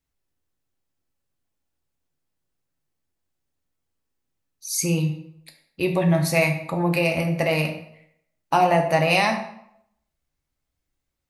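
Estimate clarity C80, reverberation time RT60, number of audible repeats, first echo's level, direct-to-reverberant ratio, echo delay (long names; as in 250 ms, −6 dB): 11.0 dB, 0.75 s, no echo audible, no echo audible, 2.5 dB, no echo audible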